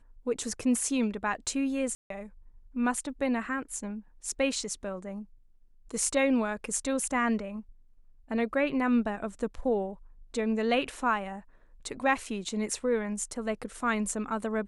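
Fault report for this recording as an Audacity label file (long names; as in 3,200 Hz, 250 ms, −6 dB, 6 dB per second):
1.950000	2.100000	drop-out 153 ms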